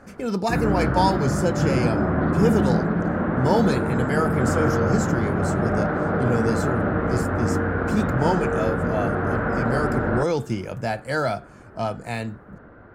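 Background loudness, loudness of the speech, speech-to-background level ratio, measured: −23.5 LKFS, −26.0 LKFS, −2.5 dB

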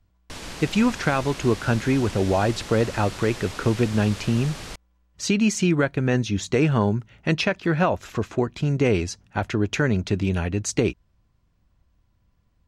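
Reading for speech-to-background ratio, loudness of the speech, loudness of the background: 13.0 dB, −23.5 LKFS, −36.5 LKFS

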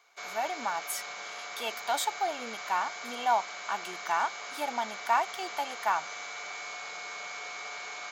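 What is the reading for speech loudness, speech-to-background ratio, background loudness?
−32.5 LKFS, 6.5 dB, −39.0 LKFS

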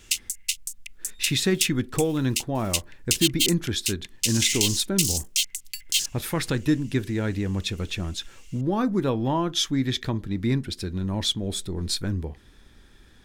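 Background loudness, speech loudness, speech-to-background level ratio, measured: −26.5 LKFS, −27.0 LKFS, −0.5 dB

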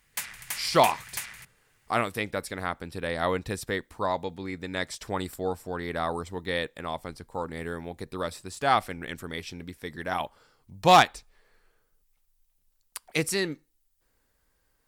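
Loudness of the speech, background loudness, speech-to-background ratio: −28.5 LKFS, −36.0 LKFS, 7.5 dB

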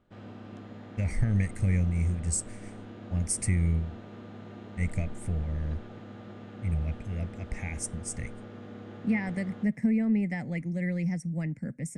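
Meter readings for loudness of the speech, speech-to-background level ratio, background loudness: −31.0 LKFS, 14.0 dB, −45.0 LKFS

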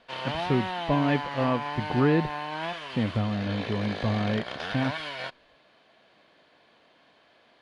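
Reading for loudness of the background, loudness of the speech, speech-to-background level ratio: −34.0 LKFS, −28.5 LKFS, 5.5 dB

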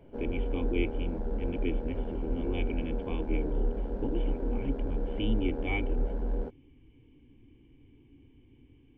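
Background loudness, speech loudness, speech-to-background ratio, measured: −35.5 LKFS, −37.0 LKFS, −1.5 dB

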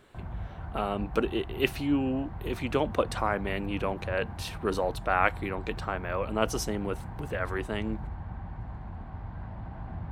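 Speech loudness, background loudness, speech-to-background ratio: −31.0 LKFS, −40.5 LKFS, 9.5 dB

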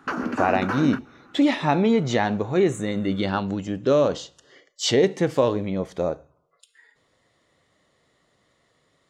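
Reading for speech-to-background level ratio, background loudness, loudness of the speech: 5.5 dB, −28.5 LKFS, −23.0 LKFS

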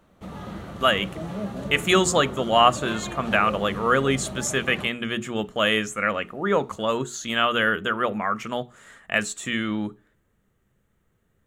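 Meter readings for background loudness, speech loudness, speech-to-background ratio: −34.5 LKFS, −23.5 LKFS, 11.0 dB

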